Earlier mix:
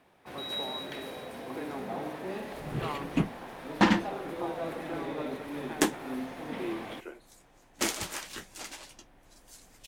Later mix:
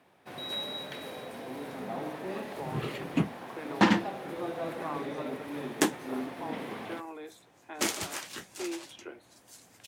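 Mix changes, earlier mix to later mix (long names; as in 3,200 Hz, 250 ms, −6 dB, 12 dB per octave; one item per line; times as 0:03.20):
speech: entry +2.00 s
master: add high-pass filter 83 Hz 24 dB per octave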